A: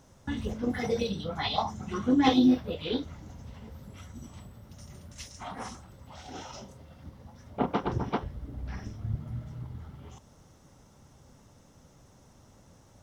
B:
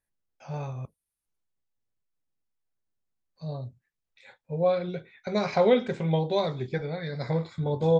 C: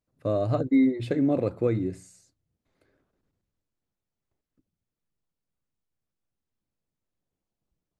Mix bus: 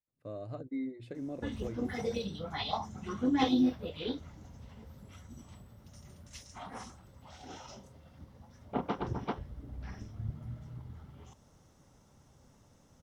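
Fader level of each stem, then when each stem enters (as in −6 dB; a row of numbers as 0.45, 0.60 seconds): −5.5 dB, muted, −16.5 dB; 1.15 s, muted, 0.00 s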